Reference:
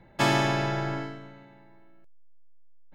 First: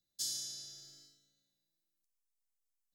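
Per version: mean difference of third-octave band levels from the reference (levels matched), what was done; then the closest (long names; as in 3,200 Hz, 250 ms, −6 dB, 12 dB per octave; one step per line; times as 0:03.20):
16.5 dB: inverse Chebyshev high-pass filter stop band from 2,600 Hz, stop band 40 dB
level +2 dB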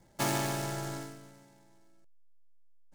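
4.5 dB: short delay modulated by noise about 5,800 Hz, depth 0.07 ms
level −7.5 dB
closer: second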